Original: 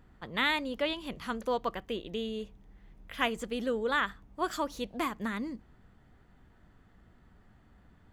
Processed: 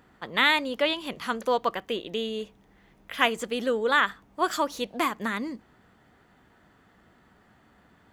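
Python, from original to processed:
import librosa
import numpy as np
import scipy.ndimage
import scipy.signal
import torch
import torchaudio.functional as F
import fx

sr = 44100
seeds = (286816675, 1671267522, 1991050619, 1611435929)

y = fx.highpass(x, sr, hz=340.0, slope=6)
y = y * 10.0 ** (7.5 / 20.0)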